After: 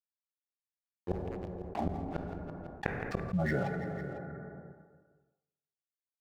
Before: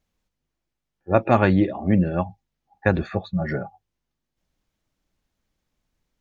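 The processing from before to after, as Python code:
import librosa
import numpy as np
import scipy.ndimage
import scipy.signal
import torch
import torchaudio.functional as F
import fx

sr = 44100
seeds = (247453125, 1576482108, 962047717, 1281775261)

p1 = fx.gate_flip(x, sr, shuts_db=-15.0, range_db=-40)
p2 = np.sign(p1) * np.maximum(np.abs(p1) - 10.0 ** (-46.5 / 20.0), 0.0)
p3 = p2 + fx.echo_feedback(p2, sr, ms=167, feedback_pct=52, wet_db=-23.0, dry=0)
p4 = fx.rev_plate(p3, sr, seeds[0], rt60_s=1.5, hf_ratio=0.5, predelay_ms=0, drr_db=15.5)
p5 = fx.env_flatten(p4, sr, amount_pct=70)
y = p5 * librosa.db_to_amplitude(-8.0)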